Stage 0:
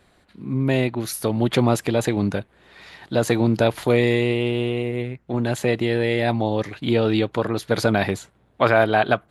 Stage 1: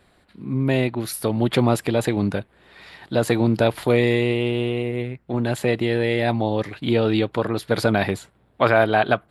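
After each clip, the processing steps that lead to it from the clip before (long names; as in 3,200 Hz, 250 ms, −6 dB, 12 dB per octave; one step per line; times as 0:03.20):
parametric band 6,300 Hz −8 dB 0.25 octaves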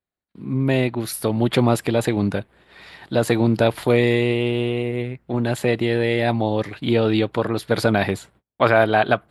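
noise gate −51 dBFS, range −34 dB
level +1 dB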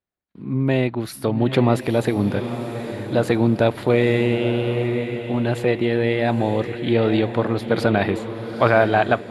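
high-shelf EQ 5,000 Hz −10 dB
feedback delay with all-pass diffusion 909 ms, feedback 42%, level −9 dB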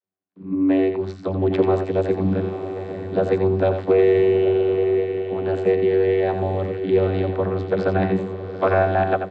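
channel vocoder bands 32, saw 94.9 Hz
single-tap delay 87 ms −8 dB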